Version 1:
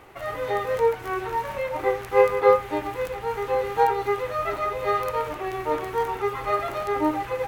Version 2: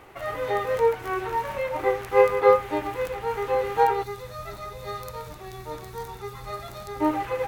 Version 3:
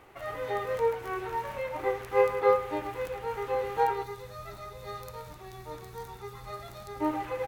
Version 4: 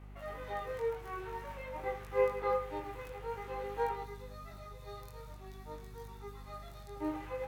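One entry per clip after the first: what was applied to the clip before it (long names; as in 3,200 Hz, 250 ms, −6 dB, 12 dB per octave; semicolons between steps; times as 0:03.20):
gain on a spectral selection 0:04.04–0:07.01, 230–3,400 Hz −11 dB
repeating echo 107 ms, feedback 39%, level −15.5 dB; level −6 dB
mains hum 50 Hz, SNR 13 dB; chorus effect 0.5 Hz, delay 19 ms, depth 3.4 ms; level −5 dB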